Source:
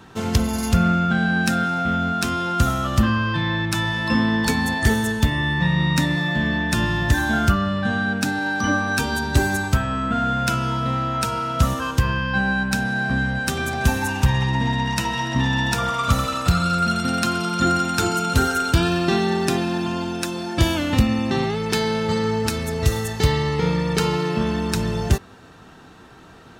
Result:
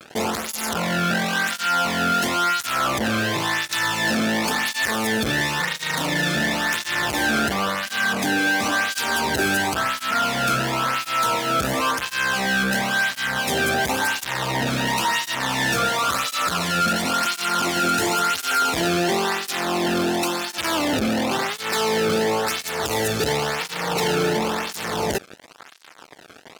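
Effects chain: fuzz box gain 35 dB, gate -41 dBFS; cancelling through-zero flanger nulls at 0.95 Hz, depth 1.1 ms; trim -3.5 dB

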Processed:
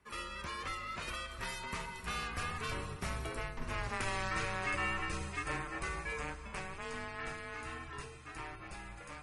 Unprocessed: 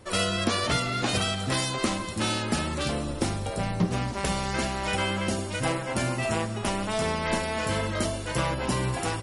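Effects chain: Doppler pass-by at 3.93 s, 21 m/s, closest 4.8 m; reverse; compression 10:1, threshold -40 dBFS, peak gain reduction 16.5 dB; reverse; frequency shift -170 Hz; high-order bell 1.6 kHz +8.5 dB; trim +4.5 dB

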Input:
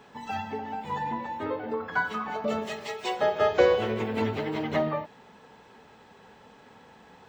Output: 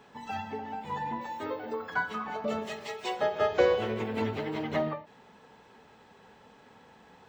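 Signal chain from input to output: 1.21–1.94 s: tone controls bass -5 dB, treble +11 dB; endings held to a fixed fall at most 170 dB/s; trim -3 dB

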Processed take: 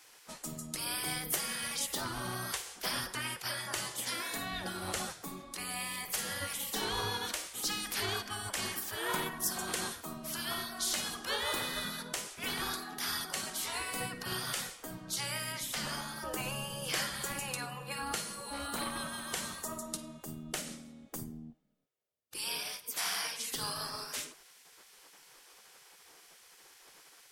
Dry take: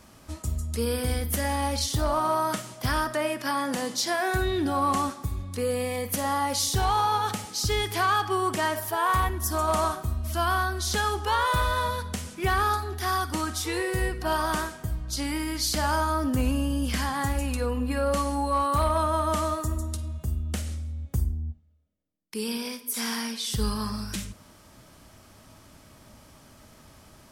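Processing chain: spectral gate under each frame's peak -15 dB weak; 15.52–16.16 s: treble shelf 5.4 kHz -5.5 dB

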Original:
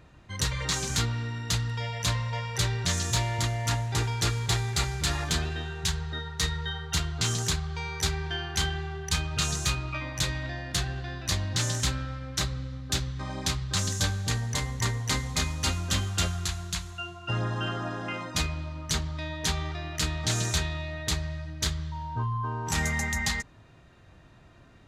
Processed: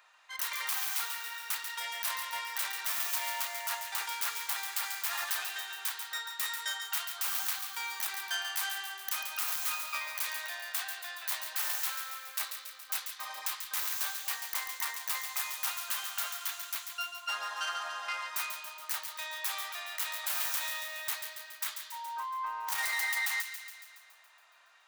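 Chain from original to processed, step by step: tracing distortion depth 0.39 ms; high-pass 870 Hz 24 dB/octave; treble shelf 11 kHz +4.5 dB; peak limiter -21 dBFS, peak gain reduction 9 dB; on a send: feedback echo behind a high-pass 140 ms, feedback 61%, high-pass 1.9 kHz, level -7 dB

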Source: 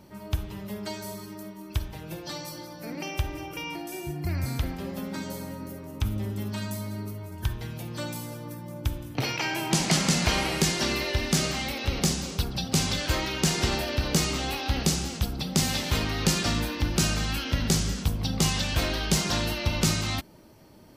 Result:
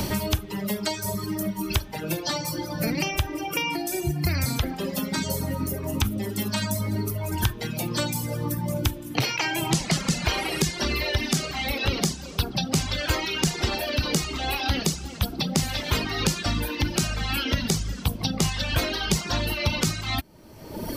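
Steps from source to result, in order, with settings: reverb removal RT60 1.6 s; three bands compressed up and down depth 100%; trim +3.5 dB

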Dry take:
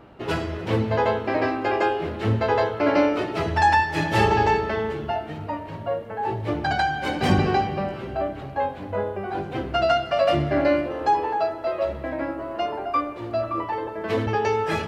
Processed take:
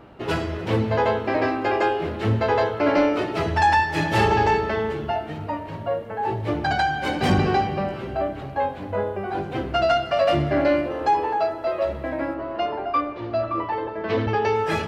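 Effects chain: 12.34–14.56 s: low-pass 5.3 kHz 24 dB/octave; saturation -11 dBFS, distortion -22 dB; trim +1.5 dB

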